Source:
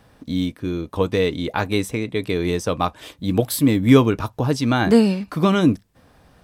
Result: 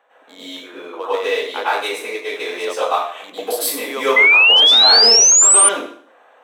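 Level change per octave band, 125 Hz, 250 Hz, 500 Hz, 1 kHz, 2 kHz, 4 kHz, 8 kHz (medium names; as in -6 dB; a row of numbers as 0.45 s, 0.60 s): under -30 dB, -17.0 dB, 0.0 dB, +5.5 dB, +14.0 dB, +19.5 dB, +23.5 dB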